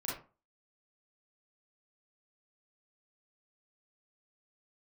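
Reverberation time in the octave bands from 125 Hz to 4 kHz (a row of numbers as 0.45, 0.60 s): 0.35, 0.35, 0.35, 0.35, 0.25, 0.20 s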